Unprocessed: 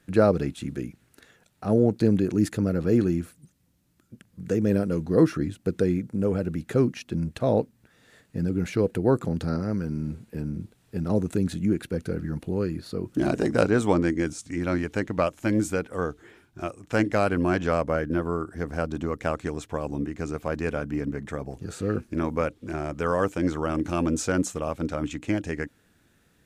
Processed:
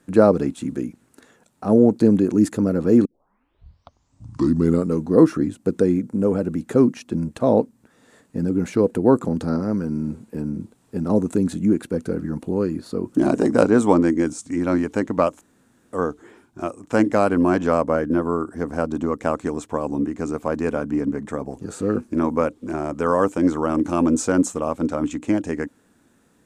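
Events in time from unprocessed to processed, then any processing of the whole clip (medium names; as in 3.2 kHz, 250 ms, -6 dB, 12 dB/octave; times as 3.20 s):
3.05 s: tape start 1.98 s
15.41–15.93 s: room tone
whole clip: graphic EQ 250/500/1000/8000 Hz +11/+5/+10/+9 dB; trim -3.5 dB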